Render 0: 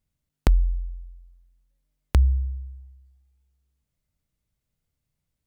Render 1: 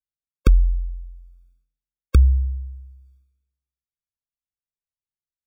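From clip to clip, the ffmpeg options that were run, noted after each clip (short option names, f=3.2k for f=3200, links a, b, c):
-af "agate=range=-33dB:threshold=-58dB:ratio=3:detection=peak,afftfilt=real='re*eq(mod(floor(b*sr/1024/540),2),0)':imag='im*eq(mod(floor(b*sr/1024/540),2),0)':win_size=1024:overlap=0.75,volume=4.5dB"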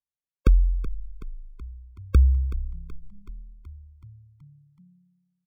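-filter_complex "[0:a]highshelf=f=2.8k:g=-6.5,asplit=8[a][b][c][d][e][f][g][h];[b]adelay=376,afreqshift=-35,volume=-14dB[i];[c]adelay=752,afreqshift=-70,volume=-18.3dB[j];[d]adelay=1128,afreqshift=-105,volume=-22.6dB[k];[e]adelay=1504,afreqshift=-140,volume=-26.9dB[l];[f]adelay=1880,afreqshift=-175,volume=-31.2dB[m];[g]adelay=2256,afreqshift=-210,volume=-35.5dB[n];[h]adelay=2632,afreqshift=-245,volume=-39.8dB[o];[a][i][j][k][l][m][n][o]amix=inputs=8:normalize=0,volume=-3dB"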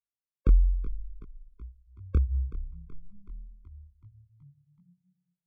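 -af "lowpass=f=1k:p=1,flanger=delay=18.5:depth=6.8:speed=2.5,volume=-2dB"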